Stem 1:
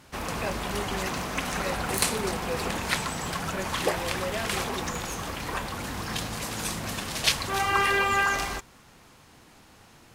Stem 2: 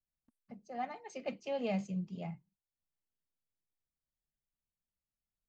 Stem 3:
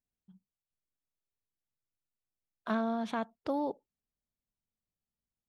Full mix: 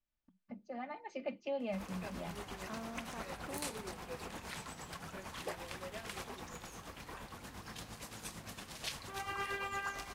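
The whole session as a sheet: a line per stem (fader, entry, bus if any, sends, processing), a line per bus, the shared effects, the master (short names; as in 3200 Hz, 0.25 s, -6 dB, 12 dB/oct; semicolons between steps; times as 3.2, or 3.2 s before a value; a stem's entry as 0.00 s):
-13.5 dB, 1.60 s, no send, tremolo 8.7 Hz, depth 57%
+2.0 dB, 0.00 s, no send, compressor 2:1, threshold -44 dBFS, peak gain reduction 7.5 dB; LPF 3700 Hz 12 dB/oct; comb 3.4 ms, depth 50%
-14.5 dB, 0.00 s, no send, dry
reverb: off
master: dry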